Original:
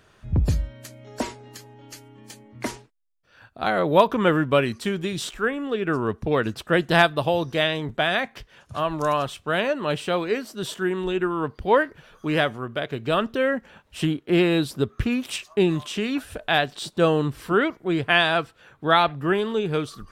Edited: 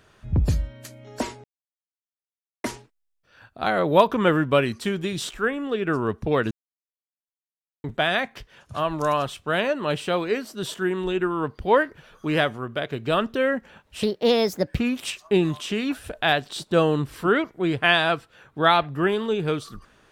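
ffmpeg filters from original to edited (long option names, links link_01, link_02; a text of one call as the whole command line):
ffmpeg -i in.wav -filter_complex "[0:a]asplit=7[link_01][link_02][link_03][link_04][link_05][link_06][link_07];[link_01]atrim=end=1.44,asetpts=PTS-STARTPTS,afade=type=out:start_time=1.436:duration=0.004:curve=hsin[link_08];[link_02]atrim=start=1.44:end=2.64,asetpts=PTS-STARTPTS,volume=0[link_09];[link_03]atrim=start=2.64:end=6.51,asetpts=PTS-STARTPTS,afade=type=in:duration=0.004:curve=hsin,afade=type=out:start_time=3.866:duration=0.004:curve=hsin[link_10];[link_04]atrim=start=6.51:end=7.84,asetpts=PTS-STARTPTS,volume=0[link_11];[link_05]atrim=start=7.84:end=14.034,asetpts=PTS-STARTPTS,afade=type=in:duration=0.004:curve=hsin[link_12];[link_06]atrim=start=14.03:end=15.03,asetpts=PTS-STARTPTS,asetrate=59535,aresample=44100[link_13];[link_07]atrim=start=15.026[link_14];[link_08][link_09][link_10][link_11][link_12]concat=n=5:v=0:a=1[link_15];[link_15][link_13]acrossfade=duration=0.004:curve1=hsin:curve2=hsin[link_16];[link_16][link_14]acrossfade=duration=0.004:curve1=hsin:curve2=hsin" out.wav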